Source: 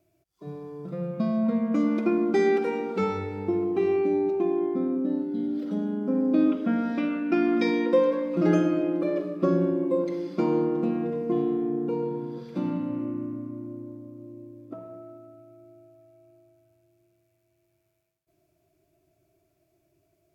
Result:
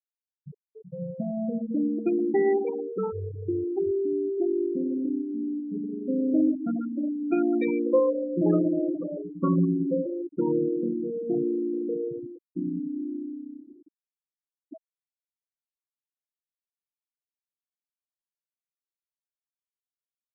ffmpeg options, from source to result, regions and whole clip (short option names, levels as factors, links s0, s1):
-filter_complex "[0:a]asettb=1/sr,asplit=3[s0][s1][s2];[s0]atrim=end=2.714[s3];[s1]atrim=start=2.71:end=4.38,asetpts=PTS-STARTPTS,afade=t=in:d=0.004:c=qsin,afade=t=out:st=1.666:d=0.004:c=qsin,lowpass=1200,asubboost=boost=8:cutoff=120[s4];[s2]atrim=start=4.376[s5];[s3][s4]acrossfade=d=0.004:c1=hsin:c2=qsin[s6];[s6][s5]acrossfade=d=0.004:c1=qsin:c2=hsin,asettb=1/sr,asplit=3[s7][s8][s9];[s7]atrim=end=8.944[s10];[s8]atrim=start=8.94:end=10.06,asetpts=PTS-STARTPTS,afade=t=in:d=0.004:c=qsin,afade=t=out:st=1.116:d=0.004:c=qsin,asubboost=boost=7.5:cutoff=220,bandreject=f=60:t=h:w=6,bandreject=f=120:t=h:w=6,bandreject=f=180:t=h:w=6,bandreject=f=240:t=h:w=6,bandreject=f=300:t=h:w=6,bandreject=f=360:t=h:w=6,bandreject=f=420:t=h:w=6,bandreject=f=480:t=h:w=6,bandreject=f=540:t=h:w=6,bandreject=f=600:t=h:w=6,aecho=1:1:4.4:0.85,atrim=end_sample=49392[s11];[s9]atrim=start=10.056[s12];[s10][s11]acrossfade=d=0.004:c1=hsin:c2=qsin[s13];[s13][s12]acrossfade=d=0.004:c1=qsin:c2=hsin,equalizer=f=210:w=5.6:g=-7.5,afftfilt=real='re*gte(hypot(re,im),0.126)':imag='im*gte(hypot(re,im),0.126)':win_size=1024:overlap=0.75,highshelf=f=3700:g=-11"